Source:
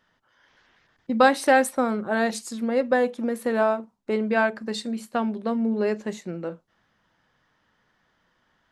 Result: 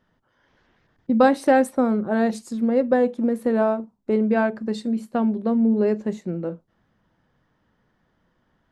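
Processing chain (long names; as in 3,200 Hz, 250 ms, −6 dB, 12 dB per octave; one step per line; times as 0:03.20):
tilt shelving filter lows +7 dB, about 740 Hz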